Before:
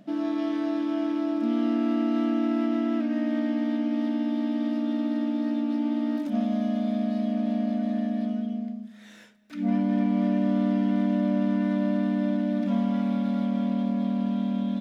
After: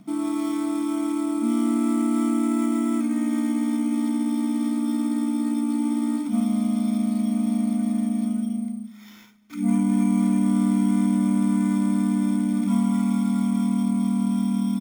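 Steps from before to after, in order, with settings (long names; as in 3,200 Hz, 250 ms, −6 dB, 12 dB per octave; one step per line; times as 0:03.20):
comb filter 0.9 ms, depth 92%
decimation without filtering 5×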